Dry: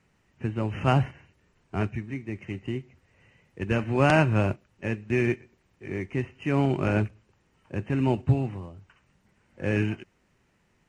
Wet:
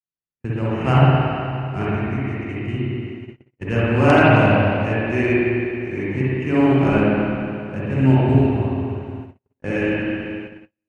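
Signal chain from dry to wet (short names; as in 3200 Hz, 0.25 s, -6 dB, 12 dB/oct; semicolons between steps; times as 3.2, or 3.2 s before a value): spring tank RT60 2.6 s, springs 53/60 ms, chirp 30 ms, DRR -8.5 dB; gate -32 dBFS, range -44 dB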